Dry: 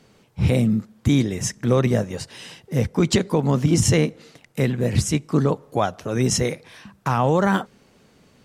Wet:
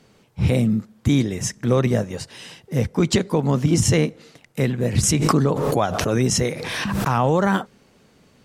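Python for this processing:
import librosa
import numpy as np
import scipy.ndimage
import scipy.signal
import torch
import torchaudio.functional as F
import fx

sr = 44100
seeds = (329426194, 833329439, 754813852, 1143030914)

y = fx.pre_swell(x, sr, db_per_s=23.0, at=(5.03, 7.35))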